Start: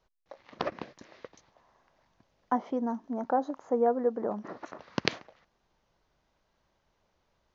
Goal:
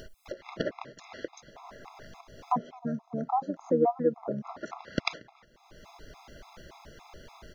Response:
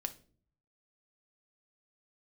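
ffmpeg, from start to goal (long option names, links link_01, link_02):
-filter_complex "[0:a]acompressor=mode=upward:threshold=-29dB:ratio=2.5,asplit=2[link_01][link_02];[link_02]asetrate=29433,aresample=44100,atempo=1.49831,volume=-7dB[link_03];[link_01][link_03]amix=inputs=2:normalize=0,asplit=2[link_04][link_05];[1:a]atrim=start_sample=2205[link_06];[link_05][link_06]afir=irnorm=-1:irlink=0,volume=-12.5dB[link_07];[link_04][link_07]amix=inputs=2:normalize=0,afftfilt=real='re*gt(sin(2*PI*3.5*pts/sr)*(1-2*mod(floor(b*sr/1024/680),2)),0)':imag='im*gt(sin(2*PI*3.5*pts/sr)*(1-2*mod(floor(b*sr/1024/680),2)),0)':win_size=1024:overlap=0.75"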